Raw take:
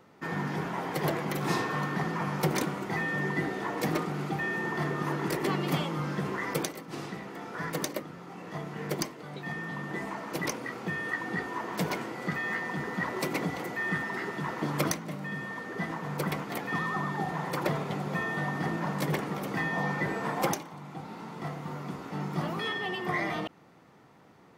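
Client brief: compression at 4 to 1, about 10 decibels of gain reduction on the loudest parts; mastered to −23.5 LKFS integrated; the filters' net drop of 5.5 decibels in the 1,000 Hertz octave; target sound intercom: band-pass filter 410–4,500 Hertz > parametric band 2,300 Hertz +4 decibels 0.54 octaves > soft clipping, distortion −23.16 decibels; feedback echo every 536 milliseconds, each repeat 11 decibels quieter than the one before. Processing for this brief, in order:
parametric band 1,000 Hz −7 dB
downward compressor 4 to 1, threshold −37 dBFS
band-pass filter 410–4,500 Hz
parametric band 2,300 Hz +4 dB 0.54 octaves
repeating echo 536 ms, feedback 28%, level −11 dB
soft clipping −31 dBFS
level +19 dB

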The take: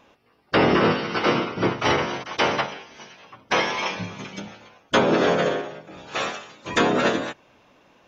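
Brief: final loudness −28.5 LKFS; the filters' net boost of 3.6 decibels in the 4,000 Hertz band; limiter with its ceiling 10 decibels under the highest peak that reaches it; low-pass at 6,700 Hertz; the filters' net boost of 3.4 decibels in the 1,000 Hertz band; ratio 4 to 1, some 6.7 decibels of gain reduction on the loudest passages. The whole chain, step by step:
low-pass filter 6,700 Hz
parametric band 1,000 Hz +4 dB
parametric band 4,000 Hz +5 dB
downward compressor 4 to 1, threshold −21 dBFS
level −0.5 dB
brickwall limiter −18 dBFS

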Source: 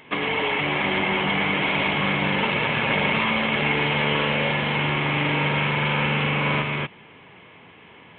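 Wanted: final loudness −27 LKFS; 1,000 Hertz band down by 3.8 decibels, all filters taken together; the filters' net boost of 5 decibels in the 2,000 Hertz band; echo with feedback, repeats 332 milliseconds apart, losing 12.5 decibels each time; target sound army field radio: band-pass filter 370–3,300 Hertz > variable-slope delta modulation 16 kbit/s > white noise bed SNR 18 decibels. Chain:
band-pass filter 370–3,300 Hz
parametric band 1,000 Hz −6.5 dB
parametric band 2,000 Hz +8 dB
repeating echo 332 ms, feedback 24%, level −12.5 dB
variable-slope delta modulation 16 kbit/s
white noise bed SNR 18 dB
level −2 dB

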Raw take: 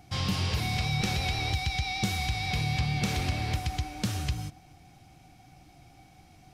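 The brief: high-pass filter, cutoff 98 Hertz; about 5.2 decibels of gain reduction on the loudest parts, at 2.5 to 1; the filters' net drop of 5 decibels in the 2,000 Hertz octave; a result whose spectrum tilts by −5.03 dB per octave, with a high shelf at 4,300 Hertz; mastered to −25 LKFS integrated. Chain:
high-pass filter 98 Hz
parametric band 2,000 Hz −4 dB
high-shelf EQ 4,300 Hz −7.5 dB
downward compressor 2.5 to 1, threshold −33 dBFS
level +11 dB

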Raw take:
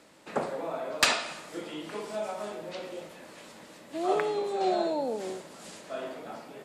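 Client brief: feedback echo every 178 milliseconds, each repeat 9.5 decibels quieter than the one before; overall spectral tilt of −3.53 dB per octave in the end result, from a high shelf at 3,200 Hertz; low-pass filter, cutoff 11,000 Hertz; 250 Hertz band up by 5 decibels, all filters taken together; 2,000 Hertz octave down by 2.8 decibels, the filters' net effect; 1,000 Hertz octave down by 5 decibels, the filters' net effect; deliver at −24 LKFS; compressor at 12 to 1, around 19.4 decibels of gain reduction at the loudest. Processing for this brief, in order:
low-pass filter 11,000 Hz
parametric band 250 Hz +8.5 dB
parametric band 1,000 Hz −8.5 dB
parametric band 2,000 Hz −4.5 dB
high-shelf EQ 3,200 Hz +7.5 dB
downward compressor 12 to 1, threshold −38 dBFS
repeating echo 178 ms, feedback 33%, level −9.5 dB
level +18 dB

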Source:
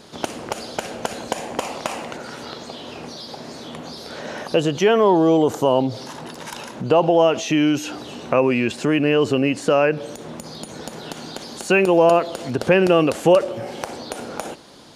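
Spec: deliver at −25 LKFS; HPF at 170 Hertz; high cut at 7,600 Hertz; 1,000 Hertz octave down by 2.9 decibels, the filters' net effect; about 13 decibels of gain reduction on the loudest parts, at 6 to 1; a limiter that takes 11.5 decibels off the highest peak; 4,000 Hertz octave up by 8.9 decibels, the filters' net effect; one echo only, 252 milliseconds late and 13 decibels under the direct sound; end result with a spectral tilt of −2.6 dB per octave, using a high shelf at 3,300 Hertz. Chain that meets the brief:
high-pass filter 170 Hz
low-pass filter 7,600 Hz
parametric band 1,000 Hz −5 dB
high-shelf EQ 3,300 Hz +7.5 dB
parametric band 4,000 Hz +8 dB
downward compressor 6 to 1, threshold −25 dBFS
brickwall limiter −20 dBFS
single-tap delay 252 ms −13 dB
level +4.5 dB

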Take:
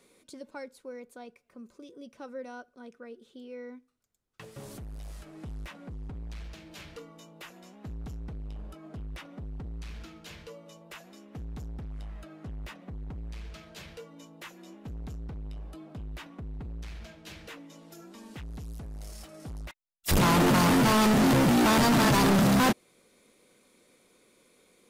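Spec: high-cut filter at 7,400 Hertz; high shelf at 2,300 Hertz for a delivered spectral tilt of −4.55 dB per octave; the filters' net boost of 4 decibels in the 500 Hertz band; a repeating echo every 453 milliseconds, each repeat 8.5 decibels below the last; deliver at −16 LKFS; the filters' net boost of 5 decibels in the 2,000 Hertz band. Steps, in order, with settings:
low-pass filter 7,400 Hz
parametric band 500 Hz +5 dB
parametric band 2,000 Hz +8 dB
high-shelf EQ 2,300 Hz −4 dB
repeating echo 453 ms, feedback 38%, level −8.5 dB
level +5.5 dB

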